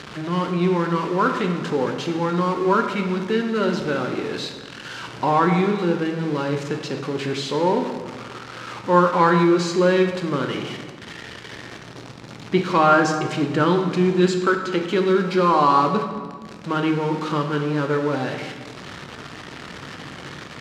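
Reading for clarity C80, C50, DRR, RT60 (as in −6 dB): 8.0 dB, 6.5 dB, 4.0 dB, 1.5 s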